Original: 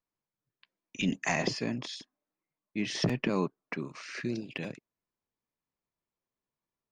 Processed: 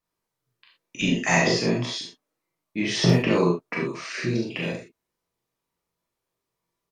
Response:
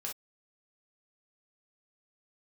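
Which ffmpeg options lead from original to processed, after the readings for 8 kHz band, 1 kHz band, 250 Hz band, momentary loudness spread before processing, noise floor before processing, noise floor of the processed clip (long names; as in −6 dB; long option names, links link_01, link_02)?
+9.5 dB, +9.0 dB, +8.5 dB, 12 LU, below −85 dBFS, −84 dBFS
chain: -filter_complex "[0:a]asplit=2[link_01][link_02];[link_02]adelay=40,volume=-5dB[link_03];[link_01][link_03]amix=inputs=2:normalize=0[link_04];[1:a]atrim=start_sample=2205,asetrate=34398,aresample=44100[link_05];[link_04][link_05]afir=irnorm=-1:irlink=0,volume=7dB"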